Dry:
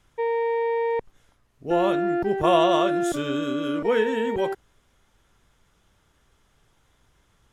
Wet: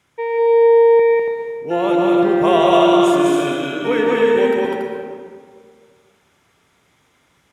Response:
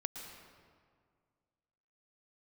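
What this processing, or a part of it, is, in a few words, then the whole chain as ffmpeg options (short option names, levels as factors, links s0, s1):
stadium PA: -filter_complex "[0:a]highpass=130,equalizer=f=2200:t=o:w=0.33:g=6,aecho=1:1:201.2|282.8:0.794|0.631[s0];[1:a]atrim=start_sample=2205[s1];[s0][s1]afir=irnorm=-1:irlink=0,volume=1.58"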